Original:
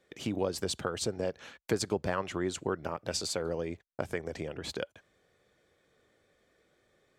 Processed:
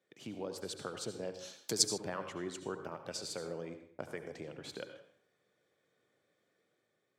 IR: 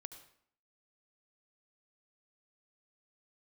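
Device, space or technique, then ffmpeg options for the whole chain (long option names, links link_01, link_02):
far laptop microphone: -filter_complex "[1:a]atrim=start_sample=2205[link_01];[0:a][link_01]afir=irnorm=-1:irlink=0,highpass=frequency=110:width=0.5412,highpass=frequency=110:width=1.3066,dynaudnorm=framelen=240:gausssize=5:maxgain=3dB,asettb=1/sr,asplit=3[link_02][link_03][link_04];[link_02]atrim=end=1.344[link_05];[link_03]atrim=start=1.34:end=1.98,asetpts=PTS-STARTPTS,afade=type=in:duration=0.004:curve=qsin,afade=type=out:start_time=0.636:duration=0.004:curve=qsin,highshelf=frequency=3300:width_type=q:width=1.5:gain=14[link_06];[link_04]atrim=start=1.976[link_07];[link_05][link_06]acrossfade=duration=0.004:curve1=hsin:curve2=qsin[link_08];[link_08][link_07]acrossfade=duration=0.004:curve1=qsin:curve2=hsin,volume=-5.5dB"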